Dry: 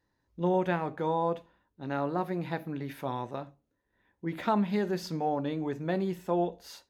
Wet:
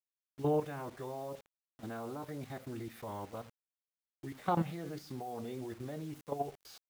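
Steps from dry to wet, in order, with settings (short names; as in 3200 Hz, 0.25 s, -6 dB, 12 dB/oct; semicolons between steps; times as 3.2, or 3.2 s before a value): formant-preserving pitch shift -3.5 st; level quantiser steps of 13 dB; bit-crush 9-bit; gain -2.5 dB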